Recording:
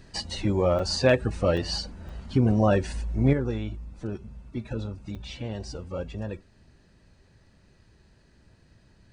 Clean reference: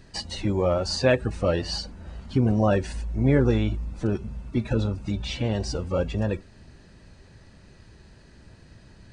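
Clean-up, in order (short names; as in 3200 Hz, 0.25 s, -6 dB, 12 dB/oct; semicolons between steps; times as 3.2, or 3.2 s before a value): clip repair -10 dBFS; interpolate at 0.79/1.57/2.09/5.15, 4.6 ms; gain correction +8 dB, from 3.33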